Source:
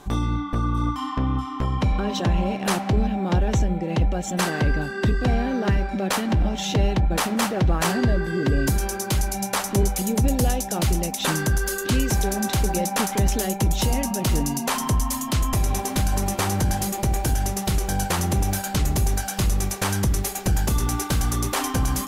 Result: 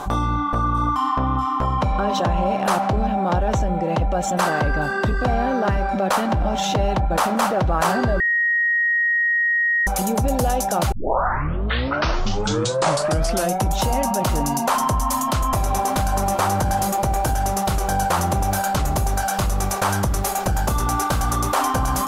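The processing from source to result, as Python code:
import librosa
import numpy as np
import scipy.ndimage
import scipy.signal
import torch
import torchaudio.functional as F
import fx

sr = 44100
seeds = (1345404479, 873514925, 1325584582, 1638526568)

y = fx.edit(x, sr, fx.bleep(start_s=8.2, length_s=1.67, hz=1880.0, db=-16.0),
    fx.tape_start(start_s=10.92, length_s=2.79), tone=tone)
y = fx.band_shelf(y, sr, hz=880.0, db=9.0, octaves=1.7)
y = fx.env_flatten(y, sr, amount_pct=50)
y = y * 10.0 ** (-3.0 / 20.0)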